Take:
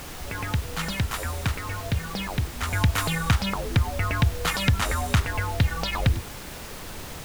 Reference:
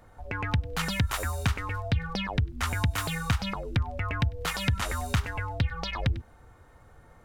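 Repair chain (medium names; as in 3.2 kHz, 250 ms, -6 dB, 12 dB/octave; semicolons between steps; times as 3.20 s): noise print and reduce 16 dB; gain correction -5 dB, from 2.73 s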